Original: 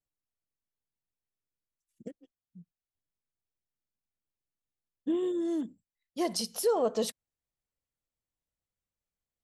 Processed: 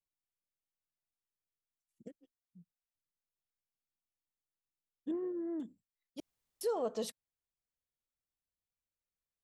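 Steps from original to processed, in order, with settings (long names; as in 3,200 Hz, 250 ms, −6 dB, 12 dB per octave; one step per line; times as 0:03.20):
0:05.11–0:05.60: Butterworth low-pass 1,900 Hz 36 dB per octave
0:06.20–0:06.61: fill with room tone
level −7.5 dB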